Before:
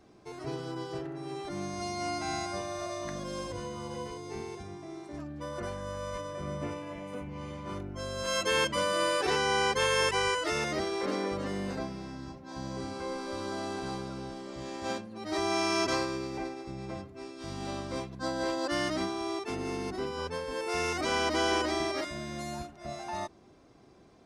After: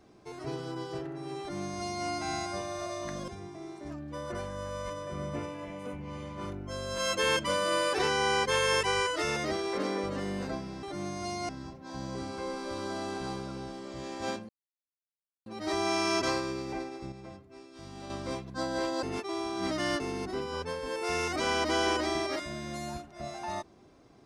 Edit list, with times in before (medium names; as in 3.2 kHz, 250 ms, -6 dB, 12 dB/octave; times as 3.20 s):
1.40–2.06 s: copy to 12.11 s
3.28–4.56 s: delete
15.11 s: insert silence 0.97 s
16.77–17.75 s: gain -7 dB
18.68–19.65 s: reverse